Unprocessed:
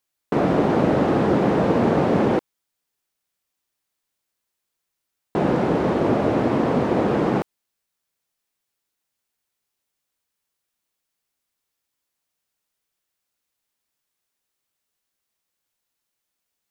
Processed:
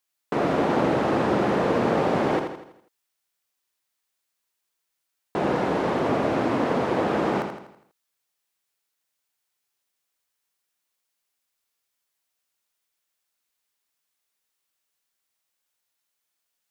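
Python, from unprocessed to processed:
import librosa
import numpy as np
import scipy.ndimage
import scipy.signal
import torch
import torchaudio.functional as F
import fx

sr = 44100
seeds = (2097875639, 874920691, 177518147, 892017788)

y = fx.low_shelf(x, sr, hz=440.0, db=-8.5)
y = fx.echo_feedback(y, sr, ms=82, feedback_pct=47, wet_db=-6.5)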